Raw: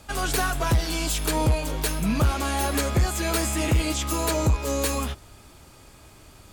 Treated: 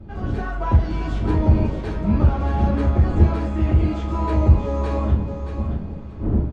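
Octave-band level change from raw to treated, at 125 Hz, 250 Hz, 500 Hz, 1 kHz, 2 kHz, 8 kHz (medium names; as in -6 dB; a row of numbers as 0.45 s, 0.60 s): +8.0 dB, +5.5 dB, +1.5 dB, 0.0 dB, -6.5 dB, under -25 dB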